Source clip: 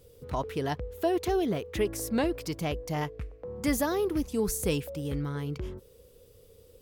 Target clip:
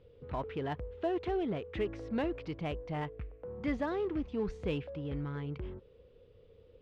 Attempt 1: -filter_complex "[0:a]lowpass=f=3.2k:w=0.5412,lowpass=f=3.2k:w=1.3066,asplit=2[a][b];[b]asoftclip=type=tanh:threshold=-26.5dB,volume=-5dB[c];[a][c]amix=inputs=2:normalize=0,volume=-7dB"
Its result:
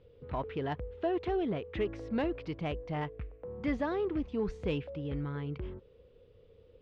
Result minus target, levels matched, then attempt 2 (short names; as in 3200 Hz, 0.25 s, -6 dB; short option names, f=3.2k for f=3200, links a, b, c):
soft clip: distortion -7 dB
-filter_complex "[0:a]lowpass=f=3.2k:w=0.5412,lowpass=f=3.2k:w=1.3066,asplit=2[a][b];[b]asoftclip=type=tanh:threshold=-36.5dB,volume=-5dB[c];[a][c]amix=inputs=2:normalize=0,volume=-7dB"